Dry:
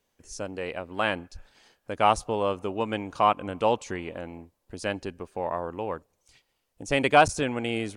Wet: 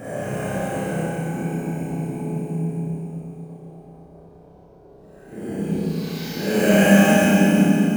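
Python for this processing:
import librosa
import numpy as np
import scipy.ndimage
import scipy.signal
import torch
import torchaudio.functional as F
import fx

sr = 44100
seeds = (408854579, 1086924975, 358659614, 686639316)

p1 = fx.high_shelf(x, sr, hz=4600.0, db=-6.0)
p2 = fx.sample_hold(p1, sr, seeds[0], rate_hz=9100.0, jitter_pct=0)
p3 = fx.filter_sweep_highpass(p2, sr, from_hz=110.0, to_hz=460.0, start_s=3.68, end_s=6.67, q=6.3)
p4 = fx.dmg_noise_band(p3, sr, seeds[1], low_hz=48.0, high_hz=650.0, level_db=-56.0)
p5 = fx.paulstretch(p4, sr, seeds[2], factor=9.3, window_s=0.05, from_s=4.15)
p6 = p5 + fx.room_flutter(p5, sr, wall_m=5.2, rt60_s=0.52, dry=0)
y = fx.rev_schroeder(p6, sr, rt60_s=3.3, comb_ms=29, drr_db=-6.5)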